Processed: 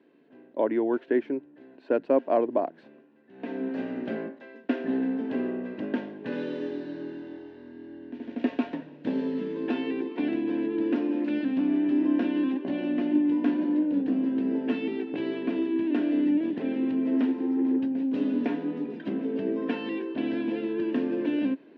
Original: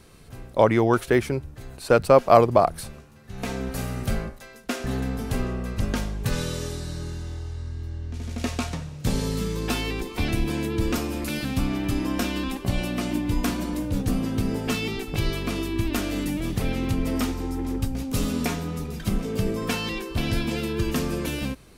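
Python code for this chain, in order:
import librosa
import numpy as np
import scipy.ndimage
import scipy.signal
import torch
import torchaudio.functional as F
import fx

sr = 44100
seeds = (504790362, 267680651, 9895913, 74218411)

y = fx.peak_eq(x, sr, hz=1200.0, db=-13.0, octaves=0.32)
y = fx.rider(y, sr, range_db=4, speed_s=0.5)
y = fx.cabinet(y, sr, low_hz=270.0, low_slope=24, high_hz=2300.0, hz=(280.0, 490.0, 780.0, 1300.0, 2200.0), db=(9, -4, -8, -7, -10))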